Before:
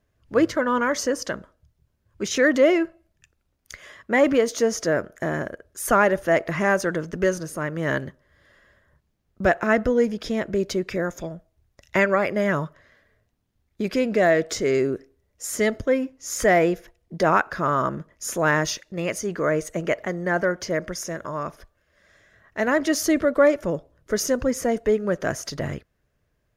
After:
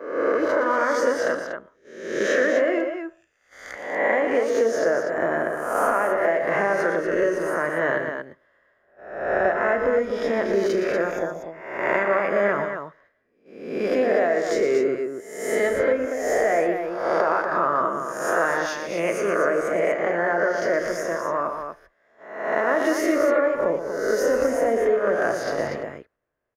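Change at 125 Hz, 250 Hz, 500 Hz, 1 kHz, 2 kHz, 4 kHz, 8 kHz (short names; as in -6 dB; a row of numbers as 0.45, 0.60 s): -9.5, -3.5, +2.0, +2.0, +1.0, -5.0, -7.0 dB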